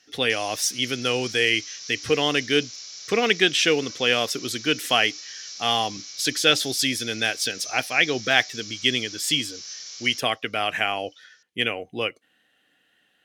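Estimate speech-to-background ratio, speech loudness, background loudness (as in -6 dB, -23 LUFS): 13.0 dB, -23.0 LUFS, -36.0 LUFS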